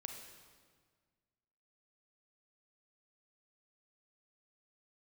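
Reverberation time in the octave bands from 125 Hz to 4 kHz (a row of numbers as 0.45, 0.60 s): 2.1, 1.9, 1.7, 1.6, 1.5, 1.4 s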